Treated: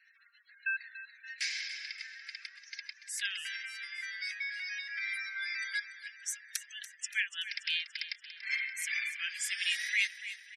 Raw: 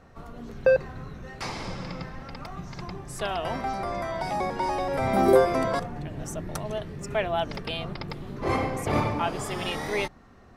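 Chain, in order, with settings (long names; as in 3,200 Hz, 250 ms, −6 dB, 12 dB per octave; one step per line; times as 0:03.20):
gate on every frequency bin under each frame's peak −30 dB strong
Chebyshev high-pass with heavy ripple 1,600 Hz, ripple 3 dB
repeating echo 287 ms, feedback 52%, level −13 dB
level +4.5 dB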